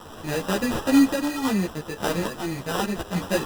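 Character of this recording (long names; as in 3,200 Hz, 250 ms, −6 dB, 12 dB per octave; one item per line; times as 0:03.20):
a quantiser's noise floor 6 bits, dither triangular
sample-and-hold tremolo
aliases and images of a low sample rate 2,200 Hz, jitter 0%
a shimmering, thickened sound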